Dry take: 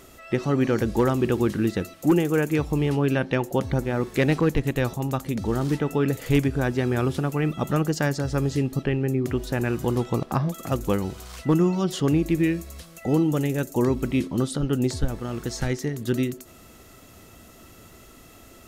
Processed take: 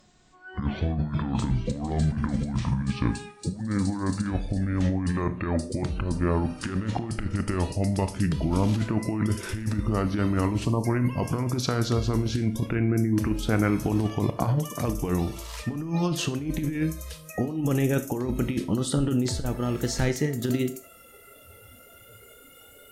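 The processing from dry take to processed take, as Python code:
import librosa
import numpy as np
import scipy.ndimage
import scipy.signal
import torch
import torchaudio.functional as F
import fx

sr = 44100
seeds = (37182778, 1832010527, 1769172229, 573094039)

y = fx.speed_glide(x, sr, from_pct=55, to_pct=108)
y = fx.noise_reduce_blind(y, sr, reduce_db=14)
y = fx.over_compress(y, sr, threshold_db=-24.0, ratio=-0.5)
y = fx.spec_erase(y, sr, start_s=10.65, length_s=0.2, low_hz=1200.0, high_hz=4100.0)
y = fx.rev_schroeder(y, sr, rt60_s=0.4, comb_ms=25, drr_db=11.0)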